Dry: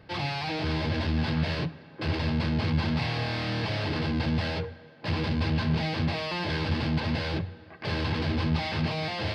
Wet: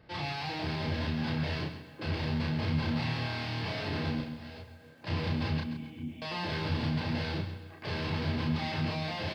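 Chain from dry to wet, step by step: 4.20–5.07 s: compression 6:1, threshold -39 dBFS, peak gain reduction 15 dB; 5.60–6.22 s: cascade formant filter i; doubling 33 ms -2.5 dB; speakerphone echo 390 ms, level -22 dB; bit-crushed delay 132 ms, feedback 35%, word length 9-bit, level -10 dB; trim -6.5 dB

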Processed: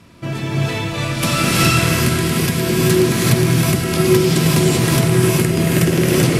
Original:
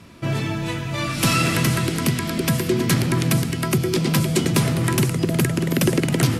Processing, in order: gated-style reverb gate 410 ms rising, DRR -5.5 dB; trim -1 dB

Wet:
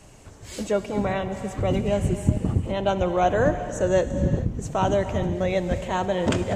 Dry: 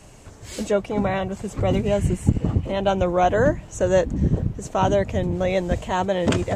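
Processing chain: gated-style reverb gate 460 ms flat, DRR 9.5 dB; trim -2.5 dB

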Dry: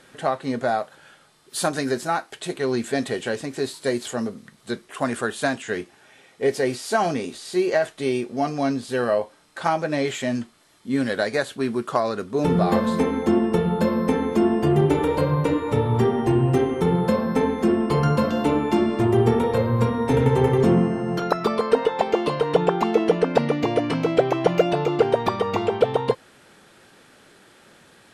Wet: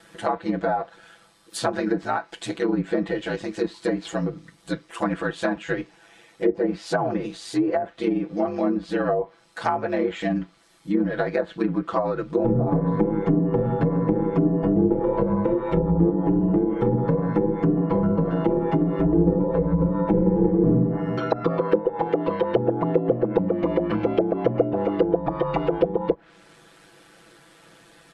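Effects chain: ring modulator 52 Hz; comb 6 ms, depth 98%; low-pass that closes with the level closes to 510 Hz, closed at -15.5 dBFS

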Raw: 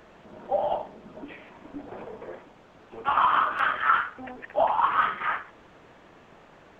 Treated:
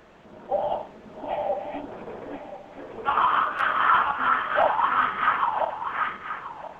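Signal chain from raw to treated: backward echo that repeats 514 ms, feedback 46%, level -1.5 dB

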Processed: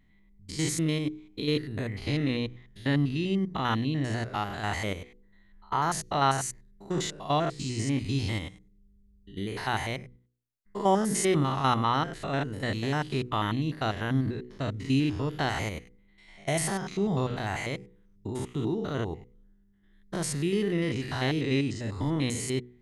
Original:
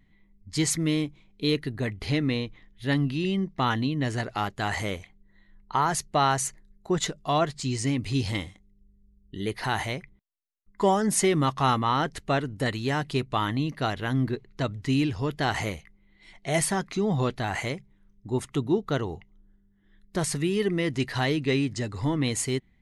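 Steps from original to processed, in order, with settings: spectrogram pixelated in time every 100 ms; de-hum 61.43 Hz, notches 8

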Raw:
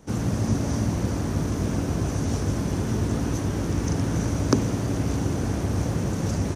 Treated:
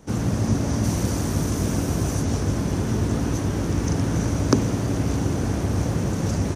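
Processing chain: 0.83–2.21 s: treble shelf 4.5 kHz -> 7.6 kHz +10 dB; trim +2 dB

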